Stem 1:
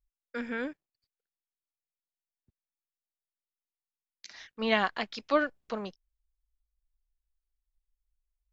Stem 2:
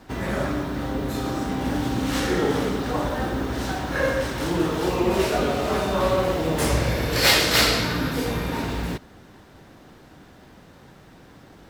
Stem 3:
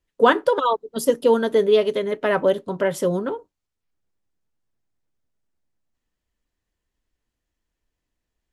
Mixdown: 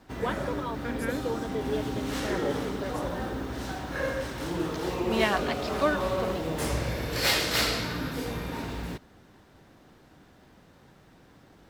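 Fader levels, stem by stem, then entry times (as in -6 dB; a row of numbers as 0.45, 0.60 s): 0.0, -7.5, -16.0 dB; 0.50, 0.00, 0.00 s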